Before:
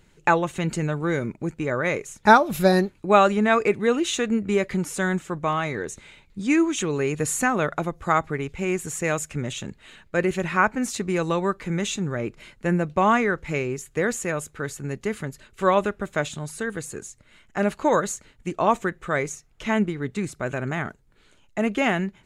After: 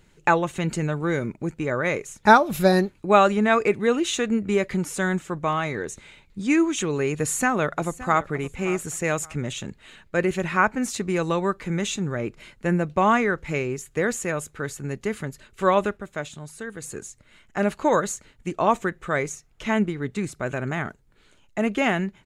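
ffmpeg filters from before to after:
ffmpeg -i in.wav -filter_complex "[0:a]asplit=2[link_01][link_02];[link_02]afade=type=in:start_time=7.2:duration=0.01,afade=type=out:start_time=8.24:duration=0.01,aecho=0:1:570|1140:0.158489|0.0396223[link_03];[link_01][link_03]amix=inputs=2:normalize=0,asplit=3[link_04][link_05][link_06];[link_04]atrim=end=15.972[link_07];[link_05]atrim=start=15.968:end=16.822,asetpts=PTS-STARTPTS,volume=-6dB[link_08];[link_06]atrim=start=16.818[link_09];[link_07][link_08]acrossfade=duration=0.004:curve1=hsin:curve2=hsin[link_10];[link_10][link_09]acrossfade=duration=0.004:curve1=hsin:curve2=hsin" out.wav

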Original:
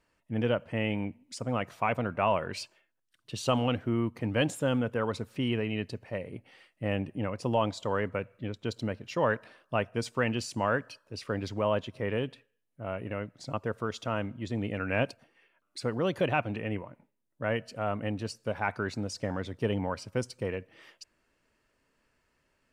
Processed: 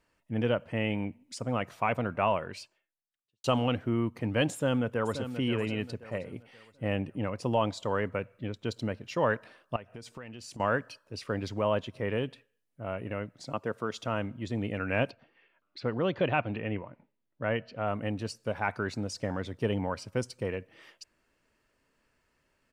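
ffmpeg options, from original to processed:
ffmpeg -i in.wav -filter_complex "[0:a]asplit=2[link_01][link_02];[link_02]afade=type=in:start_time=4.52:duration=0.01,afade=type=out:start_time=5.36:duration=0.01,aecho=0:1:530|1060|1590|2120:0.316228|0.11068|0.0387379|0.0135583[link_03];[link_01][link_03]amix=inputs=2:normalize=0,asettb=1/sr,asplit=3[link_04][link_05][link_06];[link_04]atrim=end=9.764[link_07];[link_05]atrim=start=9.76:end=10.6,asetpts=PTS-STARTPTS,afade=type=in:duration=0.004:curve=qsin,afade=type=out:start_time=0.836:duration=0.004:curve=qsin,acompressor=threshold=-41dB:ratio=6:attack=3.2:release=140:knee=1:detection=peak[link_08];[link_06]atrim=start=10.596[link_09];[link_07][link_08]acrossfade=duration=0.004:curve1=hsin:curve2=qsin[link_10];[link_10][link_09]acrossfade=duration=0.004:curve1=qsin:curve2=hsin,asettb=1/sr,asplit=3[link_11][link_12][link_13];[link_11]atrim=end=13.434[link_14];[link_12]atrim=start=13.43:end=13.97,asetpts=PTS-STARTPTS,afade=type=in:duration=0.004:curve=qsin,afade=type=out:start_time=0.536:duration=0.004:curve=qsin,highpass=140[link_15];[link_13]atrim=start=13.966[link_16];[link_14][link_15]acrossfade=duration=0.004:curve1=hsin:curve2=qsin[link_17];[link_17][link_16]acrossfade=duration=0.004:curve1=qsin:curve2=hsin,asettb=1/sr,asplit=3[link_18][link_19][link_20];[link_18]atrim=end=15.104[link_21];[link_19]atrim=start=15.1:end=17.88,asetpts=PTS-STARTPTS,afade=type=in:duration=0.004:curve=qsin,afade=type=out:start_time=2.776:duration=0.004:curve=qsin,lowpass=frequency=4300:width=0.5412,lowpass=frequency=4300:width=1.3066[link_22];[link_20]atrim=start=17.876[link_23];[link_21][link_22]acrossfade=duration=0.004:curve1=hsin:curve2=qsin[link_24];[link_24][link_23]acrossfade=duration=0.004:curve1=qsin:curve2=hsin,asplit=2[link_25][link_26];[link_25]atrim=end=3.44,asetpts=PTS-STARTPTS,afade=type=out:start_time=2.25:duration=1.19:curve=qua[link_27];[link_26]atrim=start=3.44,asetpts=PTS-STARTPTS,afade=type=in:duration=0.004:curve=hsin[link_28];[link_27][link_28]concat=n=2:v=0:a=1" out.wav

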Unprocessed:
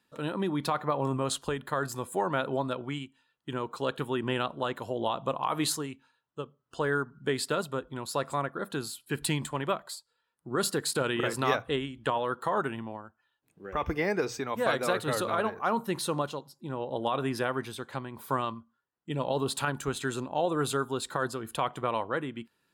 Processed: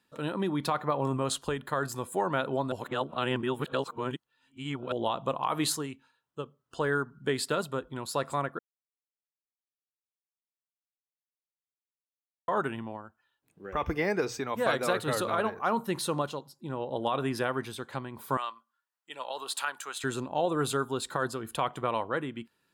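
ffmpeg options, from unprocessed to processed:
ffmpeg -i in.wav -filter_complex "[0:a]asettb=1/sr,asplit=3[link_01][link_02][link_03];[link_01]atrim=end=18.374[link_04];[link_02]atrim=start=18.37:end=20.04,asetpts=PTS-STARTPTS,afade=type=in:duration=0.004:curve=qsin,afade=type=out:start_time=1.666:duration=0.004:curve=qsin,highpass=920[link_05];[link_03]atrim=start=20.036[link_06];[link_04][link_05]acrossfade=duration=0.004:curve1=hsin:curve2=qsin[link_07];[link_07][link_06]acrossfade=duration=0.004:curve1=qsin:curve2=hsin,asplit=5[link_08][link_09][link_10][link_11][link_12];[link_08]atrim=end=2.722[link_13];[link_09]atrim=start=2.718:end=4.922,asetpts=PTS-STARTPTS,areverse[link_14];[link_10]atrim=start=4.918:end=8.59,asetpts=PTS-STARTPTS,afade=type=out:start_time=3.668:duration=0.004:curve=hsin[link_15];[link_11]atrim=start=8.59:end=12.48,asetpts=PTS-STARTPTS,volume=0[link_16];[link_12]atrim=start=12.48,asetpts=PTS-STARTPTS,afade=type=in:duration=0.004:curve=hsin[link_17];[link_13][link_14]acrossfade=duration=0.004:curve1=hsin:curve2=hsin[link_18];[link_15][link_16][link_17]concat=n=3:v=0:a=1[link_19];[link_18][link_19]acrossfade=duration=0.004:curve1=hsin:curve2=hsin" out.wav

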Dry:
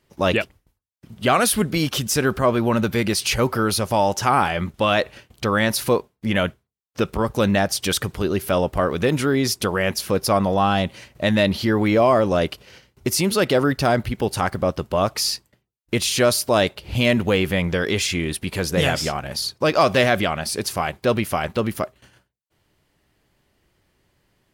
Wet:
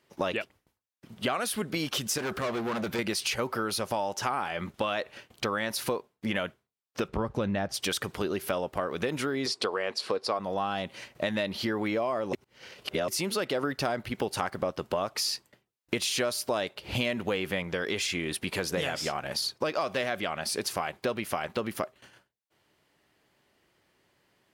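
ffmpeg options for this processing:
ffmpeg -i in.wav -filter_complex "[0:a]asettb=1/sr,asplit=3[link_01][link_02][link_03];[link_01]atrim=end=2.184[link_04];[link_02]atrim=start=2.18:end=2.99,asetpts=PTS-STARTPTS,afade=type=in:duration=0.004:curve=qsin,afade=type=out:start_time=0.806:duration=0.004:curve=qsin,asoftclip=type=hard:threshold=-23dB[link_05];[link_03]atrim=start=2.986[link_06];[link_04][link_05]acrossfade=duration=0.004:curve1=hsin:curve2=qsin[link_07];[link_07][link_06]acrossfade=duration=0.004:curve1=qsin:curve2=hsin,asettb=1/sr,asplit=3[link_08][link_09][link_10];[link_08]atrim=end=7.084[link_11];[link_09]atrim=start=7.08:end=7.74,asetpts=PTS-STARTPTS,afade=type=in:duration=0.004:curve=qsin,afade=type=out:start_time=0.656:duration=0.004:curve=qsin,aemphasis=mode=reproduction:type=bsi[link_12];[link_10]atrim=start=7.736[link_13];[link_11][link_12]acrossfade=duration=0.004:curve1=hsin:curve2=qsin[link_14];[link_14][link_13]acrossfade=duration=0.004:curve1=qsin:curve2=hsin,asettb=1/sr,asplit=3[link_15][link_16][link_17];[link_15]atrim=end=9.464[link_18];[link_16]atrim=start=9.46:end=10.39,asetpts=PTS-STARTPTS,afade=type=in:duration=0.004:curve=qsin,afade=type=out:start_time=0.926:duration=0.004:curve=qsin,highpass=150,equalizer=frequency=170:width_type=q:width=4:gain=-9,equalizer=frequency=450:width_type=q:width=4:gain=7,equalizer=frequency=730:width_type=q:width=4:gain=3,equalizer=frequency=1100:width_type=q:width=4:gain=5,equalizer=frequency=4300:width_type=q:width=4:gain=8,equalizer=frequency=6300:width_type=q:width=4:gain=-6,lowpass=frequency=8400:width=0.5412,lowpass=frequency=8400:width=1.3066[link_19];[link_17]atrim=start=10.386[link_20];[link_18][link_19]acrossfade=duration=0.004:curve1=hsin:curve2=qsin[link_21];[link_21][link_20]acrossfade=duration=0.004:curve1=qsin:curve2=hsin,asplit=5[link_22][link_23][link_24][link_25][link_26];[link_22]atrim=end=12.332[link_27];[link_23]atrim=start=12.328:end=13.082,asetpts=PTS-STARTPTS,areverse[link_28];[link_24]atrim=start=13.078:end=13.632[link_29];[link_25]atrim=start=13.628:end=17.632,asetpts=PTS-STARTPTS,volume=3.5dB[link_30];[link_26]atrim=start=17.628[link_31];[link_27][link_28]acrossfade=duration=0.004:curve1=hsin:curve2=hsin[link_32];[link_32][link_29]acrossfade=duration=0.004:curve1=hsin:curve2=hsin[link_33];[link_33][link_30]acrossfade=duration=0.004:curve1=hsin:curve2=hsin[link_34];[link_34][link_31]acrossfade=duration=0.004:curve1=hsin:curve2=hsin,highpass=frequency=330:poles=1,highshelf=frequency=6200:gain=-5,acompressor=threshold=-27dB:ratio=6" out.wav

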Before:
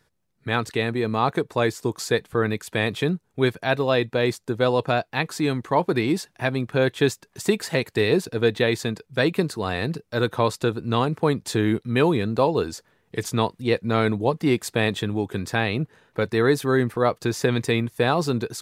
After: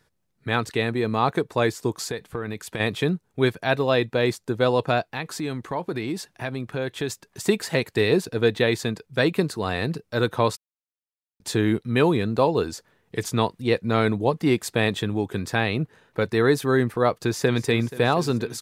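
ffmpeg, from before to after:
ffmpeg -i in.wav -filter_complex "[0:a]asplit=3[link_01][link_02][link_03];[link_01]afade=type=out:start_time=1.98:duration=0.02[link_04];[link_02]acompressor=threshold=-25dB:ratio=6:attack=3.2:release=140:knee=1:detection=peak,afade=type=in:start_time=1.98:duration=0.02,afade=type=out:start_time=2.79:duration=0.02[link_05];[link_03]afade=type=in:start_time=2.79:duration=0.02[link_06];[link_04][link_05][link_06]amix=inputs=3:normalize=0,asplit=3[link_07][link_08][link_09];[link_07]afade=type=out:start_time=5.05:duration=0.02[link_10];[link_08]acompressor=threshold=-29dB:ratio=2:attack=3.2:release=140:knee=1:detection=peak,afade=type=in:start_time=5.05:duration=0.02,afade=type=out:start_time=7.09:duration=0.02[link_11];[link_09]afade=type=in:start_time=7.09:duration=0.02[link_12];[link_10][link_11][link_12]amix=inputs=3:normalize=0,asplit=2[link_13][link_14];[link_14]afade=type=in:start_time=17.22:duration=0.01,afade=type=out:start_time=17.65:duration=0.01,aecho=0:1:240|480|720|960|1200|1440|1680|1920|2160|2400|2640|2880:0.16788|0.134304|0.107443|0.0859548|0.0687638|0.0550111|0.0440088|0.0352071|0.0281657|0.0225325|0.018026|0.0144208[link_15];[link_13][link_15]amix=inputs=2:normalize=0,asplit=3[link_16][link_17][link_18];[link_16]atrim=end=10.57,asetpts=PTS-STARTPTS,afade=type=out:start_time=10.566:duration=0.004:curve=hsin[link_19];[link_17]atrim=start=10.57:end=11.4,asetpts=PTS-STARTPTS,volume=0[link_20];[link_18]atrim=start=11.4,asetpts=PTS-STARTPTS,afade=type=in:duration=0.004:curve=hsin[link_21];[link_19][link_20][link_21]concat=n=3:v=0:a=1" out.wav

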